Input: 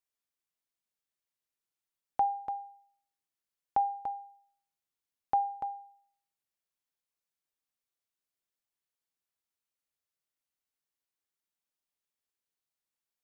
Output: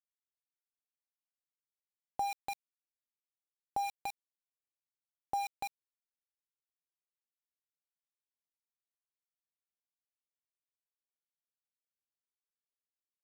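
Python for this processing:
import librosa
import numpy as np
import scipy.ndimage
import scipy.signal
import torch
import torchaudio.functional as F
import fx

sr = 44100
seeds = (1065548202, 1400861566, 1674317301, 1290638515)

y = fx.peak_eq(x, sr, hz=1600.0, db=-11.5, octaves=1.5)
y = np.where(np.abs(y) >= 10.0 ** (-37.0 / 20.0), y, 0.0)
y = fx.env_flatten(y, sr, amount_pct=50)
y = F.gain(torch.from_numpy(y), -3.5).numpy()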